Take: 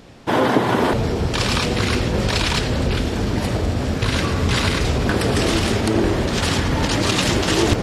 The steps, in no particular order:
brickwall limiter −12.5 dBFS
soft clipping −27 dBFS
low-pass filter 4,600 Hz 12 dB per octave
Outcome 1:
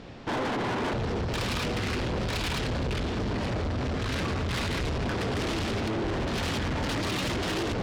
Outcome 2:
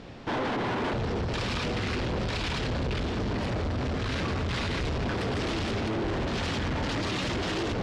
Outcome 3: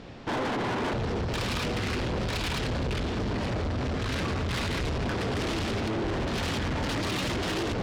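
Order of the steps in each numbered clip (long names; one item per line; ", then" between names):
low-pass filter, then brickwall limiter, then soft clipping
brickwall limiter, then soft clipping, then low-pass filter
brickwall limiter, then low-pass filter, then soft clipping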